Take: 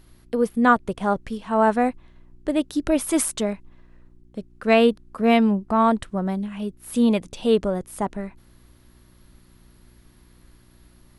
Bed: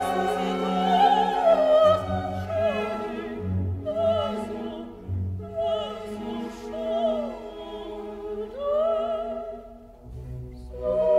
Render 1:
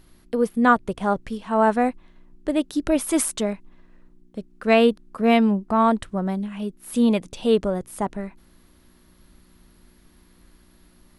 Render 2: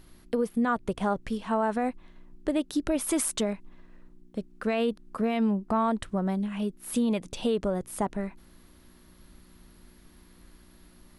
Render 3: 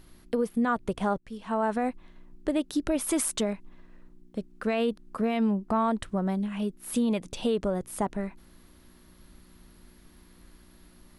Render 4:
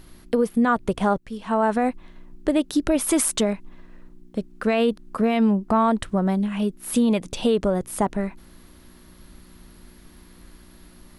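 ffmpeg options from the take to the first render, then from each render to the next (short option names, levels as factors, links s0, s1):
-af "bandreject=f=60:t=h:w=4,bandreject=f=120:t=h:w=4"
-af "alimiter=limit=0.224:level=0:latency=1:release=57,acompressor=threshold=0.0501:ratio=2"
-filter_complex "[0:a]asplit=2[s0][s1];[s0]atrim=end=1.18,asetpts=PTS-STARTPTS,afade=t=out:st=1.176:d=0.004:c=hsin:silence=0.0707946[s2];[s1]atrim=start=1.18,asetpts=PTS-STARTPTS,afade=t=in:d=0.46:silence=0.0707946[s3];[s2][s3]concat=n=2:v=0:a=1"
-af "volume=2.11"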